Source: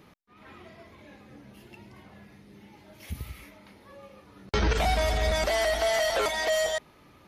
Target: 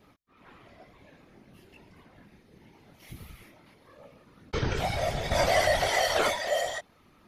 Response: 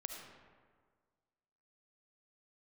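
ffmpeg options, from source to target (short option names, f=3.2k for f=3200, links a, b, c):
-filter_complex "[0:a]asettb=1/sr,asplit=3[a][b][c];[a]atrim=end=5.314[d];[b]atrim=start=5.31:end=6.34,asetpts=PTS-STARTPTS,afade=t=in:d=0.004:c=qsin,afade=t=out:st=1.026:d=0.004:c=qsin,acontrast=48[e];[c]atrim=start=6.336[f];[d][e]acrossfade=d=0.004:c1=hsin:c2=qsin[g];[g][f]acrossfade=d=0.004:c1=qsin:c2=hsin,flanger=delay=20:depth=3.9:speed=0.69,afftfilt=real='hypot(re,im)*cos(2*PI*random(0))':imag='hypot(re,im)*sin(2*PI*random(1))':win_size=512:overlap=0.75,volume=4.5dB"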